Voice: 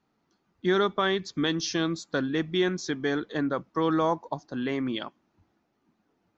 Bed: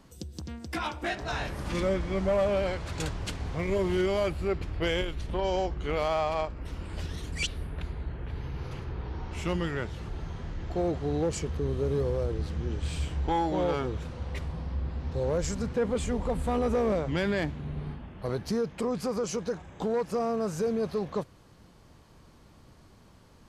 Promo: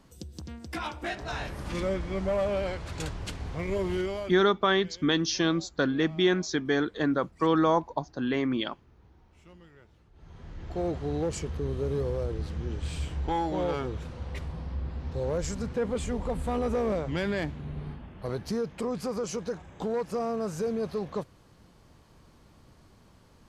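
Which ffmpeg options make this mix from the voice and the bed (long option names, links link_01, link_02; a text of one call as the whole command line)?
ffmpeg -i stem1.wav -i stem2.wav -filter_complex "[0:a]adelay=3650,volume=1.5dB[link_01];[1:a]volume=20dB,afade=type=out:start_time=3.92:duration=0.54:silence=0.0841395,afade=type=in:start_time=10.13:duration=0.73:silence=0.0794328[link_02];[link_01][link_02]amix=inputs=2:normalize=0" out.wav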